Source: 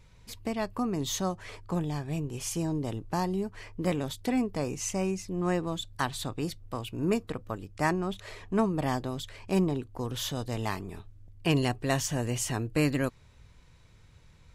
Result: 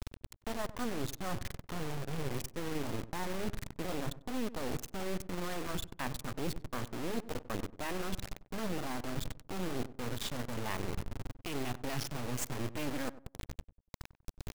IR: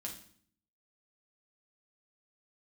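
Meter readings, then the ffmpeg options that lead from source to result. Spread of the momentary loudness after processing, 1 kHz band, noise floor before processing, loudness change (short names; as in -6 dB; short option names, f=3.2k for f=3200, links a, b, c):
6 LU, -7.0 dB, -57 dBFS, -8.0 dB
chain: -filter_complex "[0:a]afwtdn=0.0141,alimiter=limit=-21.5dB:level=0:latency=1:release=33,areverse,acompressor=threshold=-46dB:ratio=6,areverse,acrusher=bits=6:dc=4:mix=0:aa=0.000001,asplit=2[a][b];[b]adelay=96,lowpass=f=1k:p=1,volume=-14.5dB,asplit=2[c][d];[d]adelay=96,lowpass=f=1k:p=1,volume=0.34,asplit=2[e][f];[f]adelay=96,lowpass=f=1k:p=1,volume=0.34[g];[a][c][e][g]amix=inputs=4:normalize=0,volume=15dB"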